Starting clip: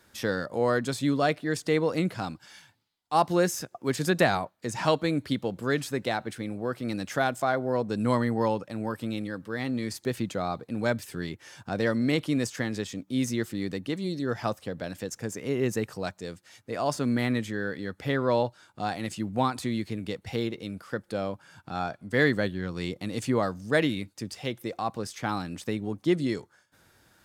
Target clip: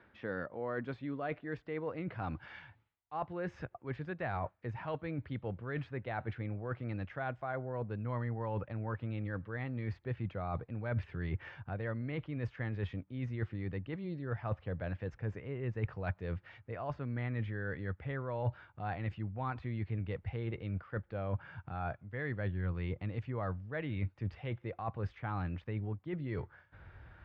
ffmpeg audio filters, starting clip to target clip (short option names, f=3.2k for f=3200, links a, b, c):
-af "areverse,acompressor=threshold=-39dB:ratio=6,areverse,lowpass=f=2.5k:w=0.5412,lowpass=f=2.5k:w=1.3066,asubboost=boost=10.5:cutoff=73,highpass=41,volume=3.5dB"